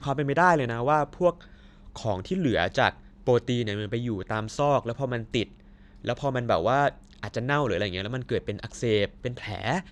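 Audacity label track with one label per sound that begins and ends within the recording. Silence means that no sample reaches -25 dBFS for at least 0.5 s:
2.050000	5.430000	sound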